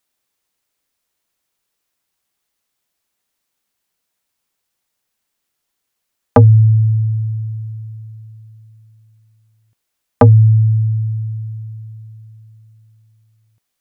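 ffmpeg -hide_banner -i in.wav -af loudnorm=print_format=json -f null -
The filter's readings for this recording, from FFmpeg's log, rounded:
"input_i" : "-14.6",
"input_tp" : "-1.2",
"input_lra" : "11.5",
"input_thresh" : "-28.5",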